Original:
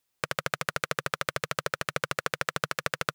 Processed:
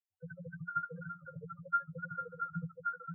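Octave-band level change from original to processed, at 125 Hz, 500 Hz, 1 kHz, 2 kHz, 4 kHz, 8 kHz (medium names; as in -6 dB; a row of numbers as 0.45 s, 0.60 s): -4.0 dB, -16.0 dB, -5.0 dB, -12.0 dB, under -40 dB, under -40 dB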